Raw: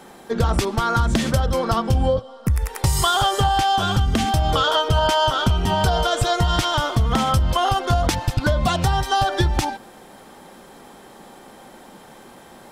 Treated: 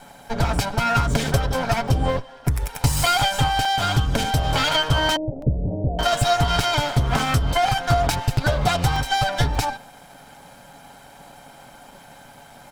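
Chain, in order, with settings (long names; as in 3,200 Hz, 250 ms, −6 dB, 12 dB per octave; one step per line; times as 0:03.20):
lower of the sound and its delayed copy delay 1.3 ms
0:05.16–0:05.99: elliptic low-pass filter 580 Hz, stop band 60 dB
comb filter 7.1 ms, depth 40%
regular buffer underruns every 0.59 s, samples 128, zero, from 0:00.70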